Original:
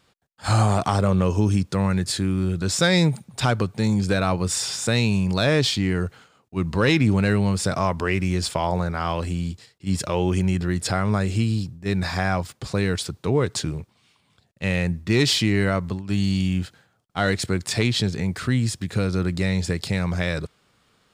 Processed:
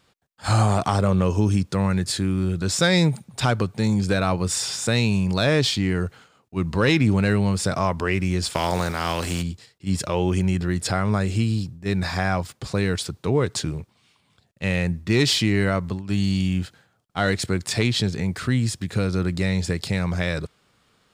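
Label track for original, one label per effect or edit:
8.530000	9.410000	spectral contrast reduction exponent 0.64

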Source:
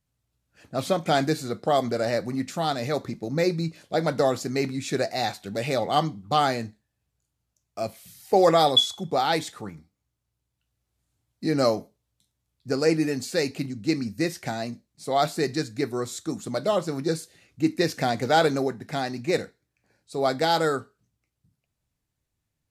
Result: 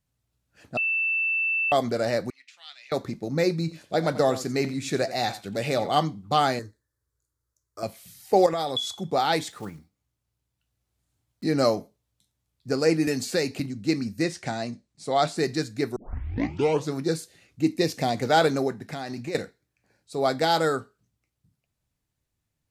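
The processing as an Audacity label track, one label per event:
0.770000	1.720000	bleep 2.66 kHz -22 dBFS
2.300000	2.920000	ladder band-pass 3 kHz, resonance 45%
3.590000	5.920000	delay 88 ms -15 dB
6.590000	7.830000	static phaser centre 730 Hz, stages 6
8.460000	8.980000	compression, threshold -24 dBFS
9.510000	11.440000	block-companded coder 5-bit
13.070000	13.600000	three bands compressed up and down depth 70%
14.230000	15.380000	low-pass 9.5 kHz 24 dB/octave
15.960000	15.960000	tape start 0.99 s
17.630000	18.170000	peaking EQ 1.5 kHz -10 dB 0.51 oct
18.800000	19.350000	compression 10:1, threshold -28 dBFS

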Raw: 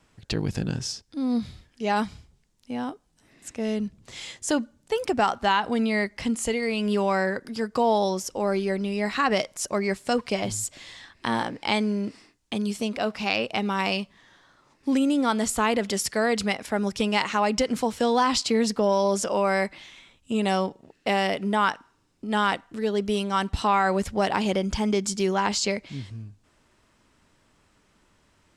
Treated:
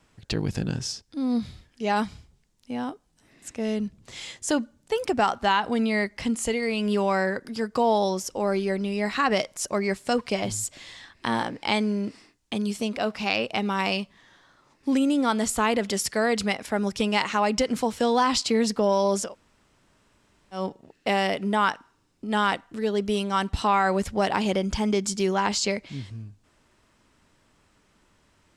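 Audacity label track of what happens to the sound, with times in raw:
19.270000	20.590000	room tone, crossfade 0.16 s

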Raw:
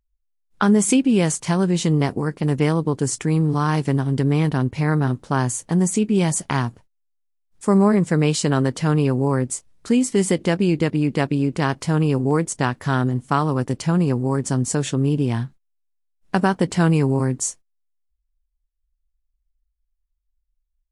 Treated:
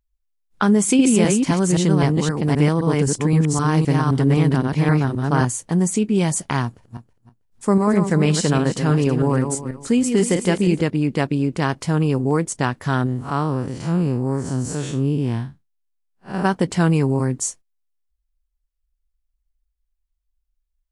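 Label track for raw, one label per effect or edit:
0.730000	5.450000	chunks repeated in reverse 260 ms, level -2 dB
6.650000	10.810000	backward echo that repeats 161 ms, feedback 41%, level -6.5 dB
13.060000	16.450000	spectral blur width 113 ms

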